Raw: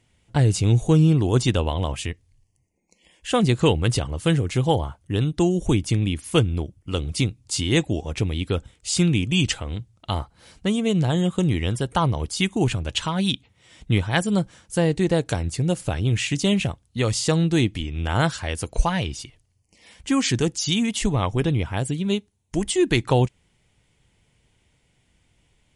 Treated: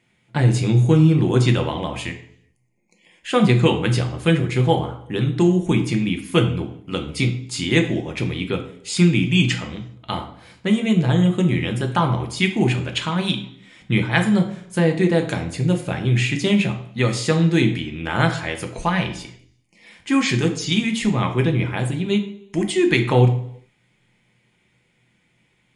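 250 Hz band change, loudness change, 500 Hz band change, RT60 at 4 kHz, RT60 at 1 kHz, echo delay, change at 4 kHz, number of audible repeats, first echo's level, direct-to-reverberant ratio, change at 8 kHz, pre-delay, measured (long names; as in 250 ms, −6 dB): +3.5 dB, +3.0 dB, +2.5 dB, 0.70 s, 0.70 s, no echo audible, +1.0 dB, no echo audible, no echo audible, 4.0 dB, −3.5 dB, 3 ms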